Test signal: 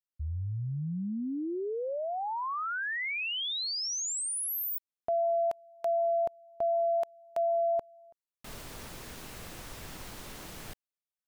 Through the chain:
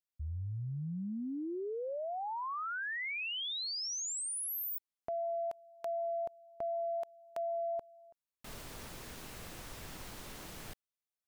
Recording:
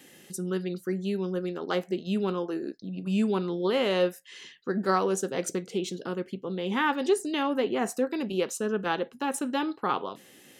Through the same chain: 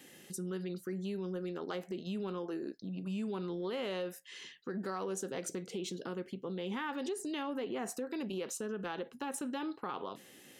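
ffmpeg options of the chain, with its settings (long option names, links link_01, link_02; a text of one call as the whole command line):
ffmpeg -i in.wav -af "acompressor=threshold=-31dB:ratio=6:attack=2:release=110:knee=6:detection=peak,volume=-3dB" out.wav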